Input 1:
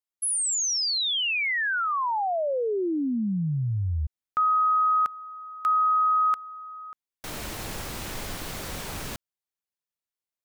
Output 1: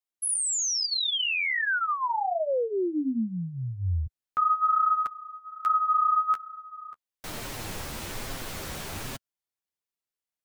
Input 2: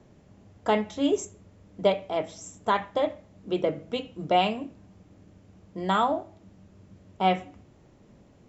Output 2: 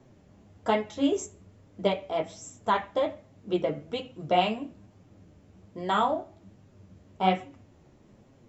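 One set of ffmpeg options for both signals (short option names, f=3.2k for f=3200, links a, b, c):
-af "flanger=delay=7.4:depth=6.5:regen=-12:speed=1.2:shape=sinusoidal,volume=2dB"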